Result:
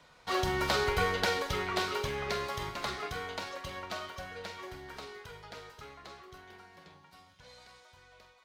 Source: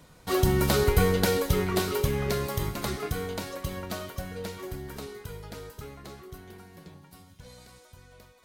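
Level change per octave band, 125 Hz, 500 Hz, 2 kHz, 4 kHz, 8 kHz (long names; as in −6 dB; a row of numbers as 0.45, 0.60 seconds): −13.0, −7.0, +0.5, −1.0, −8.5 decibels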